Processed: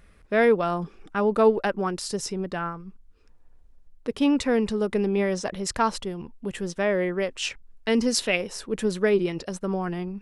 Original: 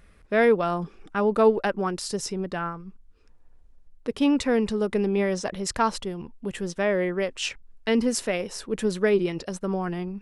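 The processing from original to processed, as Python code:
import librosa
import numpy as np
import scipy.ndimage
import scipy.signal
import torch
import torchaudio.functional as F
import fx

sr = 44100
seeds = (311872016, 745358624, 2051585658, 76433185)

y = fx.peak_eq(x, sr, hz=fx.line((7.89, 9300.0), (8.35, 2500.0)), db=12.0, octaves=0.62, at=(7.89, 8.35), fade=0.02)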